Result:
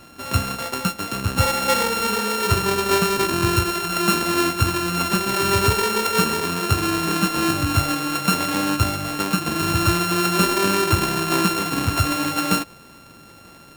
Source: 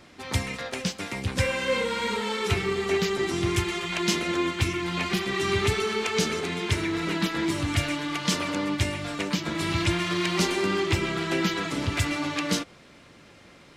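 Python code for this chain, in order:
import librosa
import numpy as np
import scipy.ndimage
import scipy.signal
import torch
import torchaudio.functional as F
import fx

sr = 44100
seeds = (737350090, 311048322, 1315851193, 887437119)

y = np.r_[np.sort(x[:len(x) // 32 * 32].reshape(-1, 32), axis=1).ravel(), x[len(x) // 32 * 32:]]
y = y * librosa.db_to_amplitude(6.0)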